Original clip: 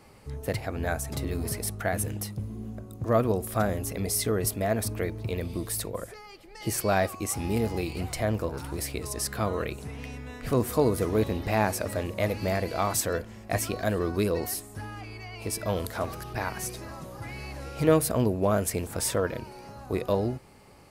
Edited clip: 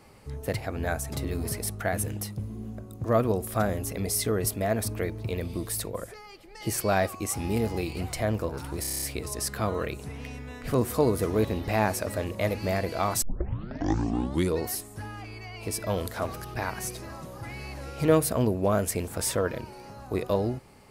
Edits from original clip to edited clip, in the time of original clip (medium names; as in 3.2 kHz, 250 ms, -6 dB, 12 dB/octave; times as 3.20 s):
8.81 s: stutter 0.03 s, 8 plays
13.01 s: tape start 1.39 s